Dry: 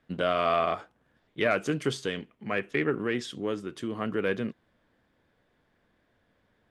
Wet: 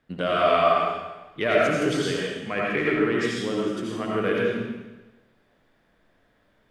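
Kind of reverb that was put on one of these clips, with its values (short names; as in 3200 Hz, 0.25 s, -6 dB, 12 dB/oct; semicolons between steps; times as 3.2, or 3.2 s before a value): digital reverb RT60 1.1 s, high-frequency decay 1×, pre-delay 45 ms, DRR -4.5 dB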